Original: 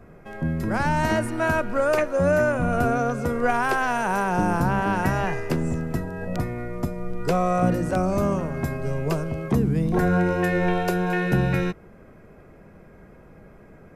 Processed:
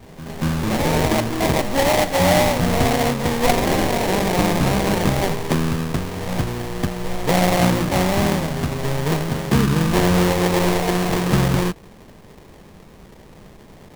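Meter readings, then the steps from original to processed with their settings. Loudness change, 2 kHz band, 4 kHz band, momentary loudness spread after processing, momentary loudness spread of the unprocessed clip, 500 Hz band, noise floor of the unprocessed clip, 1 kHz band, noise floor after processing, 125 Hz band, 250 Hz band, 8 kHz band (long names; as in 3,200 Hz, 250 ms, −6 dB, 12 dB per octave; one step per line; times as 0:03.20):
+4.5 dB, +2.0 dB, +15.5 dB, 9 LU, 8 LU, +3.5 dB, −49 dBFS, +3.0 dB, −45 dBFS, +4.5 dB, +4.5 dB, +13.5 dB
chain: sample-rate reduction 1,400 Hz, jitter 20%
echo ahead of the sound 234 ms −14.5 dB
level +4 dB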